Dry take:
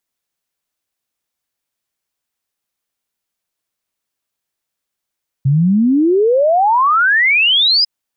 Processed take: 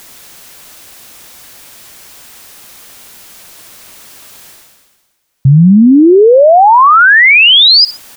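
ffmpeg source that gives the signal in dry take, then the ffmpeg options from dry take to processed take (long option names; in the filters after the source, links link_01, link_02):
-f lavfi -i "aevalsrc='0.355*clip(min(t,2.4-t)/0.01,0,1)*sin(2*PI*130*2.4/log(5100/130)*(exp(log(5100/130)*t/2.4)-1))':duration=2.4:sample_rate=44100"
-af "areverse,acompressor=mode=upward:threshold=-28dB:ratio=2.5,areverse,aecho=1:1:61|122:0.0668|0.0227,alimiter=level_in=15.5dB:limit=-1dB:release=50:level=0:latency=1"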